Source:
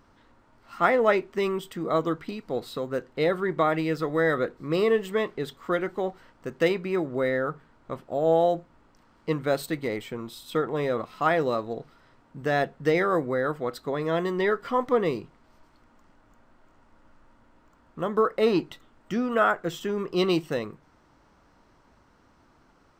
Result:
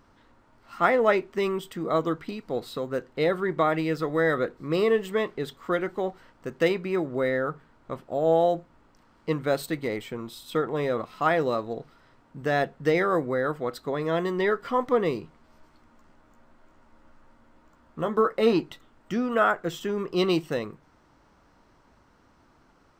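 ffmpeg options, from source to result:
-filter_complex "[0:a]asettb=1/sr,asplit=3[a][b][c];[a]atrim=end=15.214[d];[b]atrim=start=15.21:end=18.53,asetpts=PTS-STARTPTS,afade=t=in:d=0.004:c=qsin,afade=t=out:st=3.316:d=0.004:c=qsin,asplit=2[e][f];[f]adelay=13,volume=-7dB[g];[e][g]amix=inputs=2:normalize=0,atrim=end_sample=146412[h];[c]atrim=start=18.526[i];[d][h]acrossfade=d=0.004:c1=hsin:c2=qsin[j];[j][i]acrossfade=d=0.004:c1=qsin:c2=hsin"

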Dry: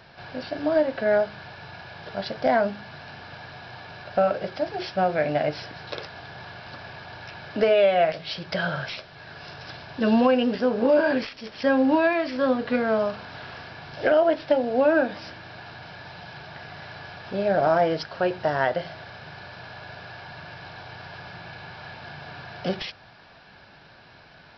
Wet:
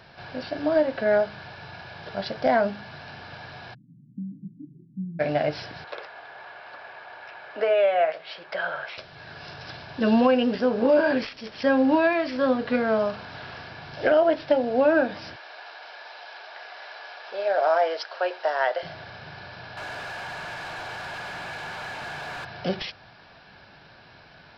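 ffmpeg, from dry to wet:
-filter_complex "[0:a]asplit=3[a][b][c];[a]afade=t=out:st=3.73:d=0.02[d];[b]asuperpass=centerf=190:order=12:qfactor=1.2,afade=t=in:st=3.73:d=0.02,afade=t=out:st=5.19:d=0.02[e];[c]afade=t=in:st=5.19:d=0.02[f];[d][e][f]amix=inputs=3:normalize=0,asettb=1/sr,asplit=3[g][h][i];[g]atrim=end=5.844[j];[h]atrim=start=5.84:end=8.98,asetpts=PTS-STARTPTS,afade=t=in:d=0.004:c=qsin,afade=t=out:st=3.136:d=0.004:c=qsin,acrossover=split=410 2700:gain=0.0631 1 0.224[k][l][m];[k][l][m]amix=inputs=3:normalize=0[n];[i]atrim=start=8.976[o];[j][n]acrossfade=d=0.004:c1=hsin:c2=qsin[p];[p][o]acrossfade=d=0.004:c1=qsin:c2=hsin,asettb=1/sr,asplit=3[q][r][s];[q]atrim=end=15.364[t];[r]atrim=start=15.36:end=18.83,asetpts=PTS-STARTPTS,afade=t=in:d=0.004:c=qsin,afade=t=out:st=3.466:d=0.004:c=qsin,highpass=f=490:w=0.5412,highpass=f=490:w=1.3066[u];[s]atrim=start=18.826[v];[t][u]acrossfade=d=0.004:c1=hsin:c2=qsin[w];[w][v]acrossfade=d=0.004:c1=qsin:c2=hsin,asettb=1/sr,asplit=3[x][y][z];[x]atrim=end=19.774[aa];[y]atrim=start=19.77:end=22.45,asetpts=PTS-STARTPTS,afade=t=in:d=0.004:c=qsin,afade=t=out:st=2.676:d=0.004:c=qsin,asplit=2[ab][ac];[ac]highpass=f=720:p=1,volume=23dB,asoftclip=type=tanh:threshold=-28dB[ad];[ab][ad]amix=inputs=2:normalize=0,lowpass=f=2.6k:p=1,volume=-6dB[ae];[z]atrim=start=22.446[af];[aa][ae]acrossfade=d=0.004:c1=hsin:c2=qsin[ag];[ag][af]acrossfade=d=0.004:c1=qsin:c2=hsin"

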